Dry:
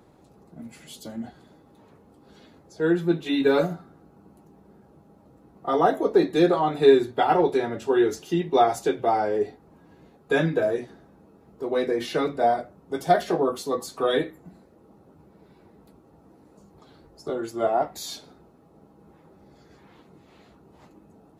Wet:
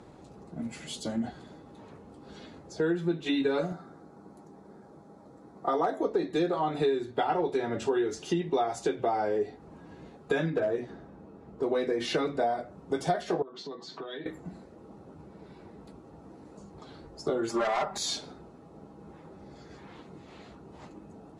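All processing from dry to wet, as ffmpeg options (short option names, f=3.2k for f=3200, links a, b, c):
-filter_complex "[0:a]asettb=1/sr,asplit=3[a][b][c];[a]atrim=end=3.724[d];[b]atrim=start=3.72:end=6.01,asetpts=PTS-STARTPTS,afade=t=in:d=0.004:c=qsin,afade=t=out:st=2.286:d=0.004:c=qsin,asoftclip=type=hard:threshold=-11.5dB,highpass=f=230:p=1,equalizer=f=2.8k:t=o:w=0.31:g=-13[e];[c]atrim=start=6.006[f];[d][e]acrossfade=d=0.004:c1=hsin:c2=qsin[g];[g][f]acrossfade=d=0.004:c1=qsin:c2=hsin,asettb=1/sr,asplit=3[h][i][j];[h]atrim=end=10.504[k];[i]atrim=start=10.5:end=11.63,asetpts=PTS-STARTPTS,afade=t=in:d=0.004:c=qsin,afade=t=out:st=1.126:d=0.004:c=qsin,highshelf=f=3.1k:g=-8,asoftclip=type=hard:threshold=-17dB[l];[j]atrim=start=11.626[m];[k][l]acrossfade=d=0.004:c1=hsin:c2=qsin[n];[n][m]acrossfade=d=0.004:c1=qsin:c2=hsin,asettb=1/sr,asplit=3[o][p][q];[o]atrim=end=13.424[r];[p]atrim=start=13.42:end=14.26,asetpts=PTS-STARTPTS,afade=t=in:d=0.004:c=qsin,afade=t=out:st=0.836:d=0.004:c=qsin,acompressor=threshold=-38dB:ratio=5:attack=3.2:release=140:knee=1:detection=peak,highpass=f=150:w=0.5412,highpass=f=150:w=1.3066,equalizer=f=250:t=q:w=4:g=-6,equalizer=f=520:t=q:w=4:g=-10,equalizer=f=780:t=q:w=4:g=-4,equalizer=f=1.2k:t=q:w=4:g=-7,equalizer=f=2.5k:t=q:w=4:g=-6,lowpass=f=4.6k:w=0.5412,lowpass=f=4.6k:w=1.3066[s];[q]atrim=start=14.256[t];[r][s]acrossfade=d=0.004:c1=hsin:c2=qsin[u];[u][t]acrossfade=d=0.004:c1=qsin:c2=hsin,asettb=1/sr,asplit=3[v][w][x];[v]atrim=end=17.494[y];[w]atrim=start=17.49:end=17.98,asetpts=PTS-STARTPTS,afade=t=in:d=0.004:c=qsin,afade=t=out:st=0.486:d=0.004:c=qsin,volume=27.5dB,asoftclip=hard,volume=-27.5dB,equalizer=f=1.1k:t=o:w=1.1:g=10,aecho=1:1:5:0.83,atrim=end_sample=21609[z];[x]atrim=start=17.976[aa];[y][z]acrossfade=d=0.004:c1=hsin:c2=qsin[ab];[ab][aa]acrossfade=d=0.004:c1=qsin:c2=hsin,lowpass=f=9.2k:w=0.5412,lowpass=f=9.2k:w=1.3066,acompressor=threshold=-30dB:ratio=6,volume=4.5dB"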